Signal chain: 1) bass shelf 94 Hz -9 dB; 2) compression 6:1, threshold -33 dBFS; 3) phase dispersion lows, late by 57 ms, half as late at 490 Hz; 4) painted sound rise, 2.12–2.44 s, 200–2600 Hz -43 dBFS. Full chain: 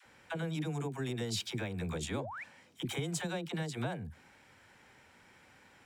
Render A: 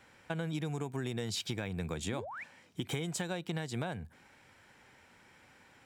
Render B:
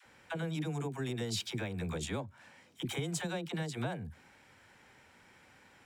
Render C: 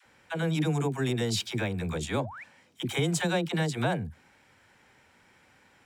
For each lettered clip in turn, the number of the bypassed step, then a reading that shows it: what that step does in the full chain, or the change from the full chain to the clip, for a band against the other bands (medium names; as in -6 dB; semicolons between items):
3, crest factor change +3.0 dB; 4, momentary loudness spread change +4 LU; 2, mean gain reduction 4.5 dB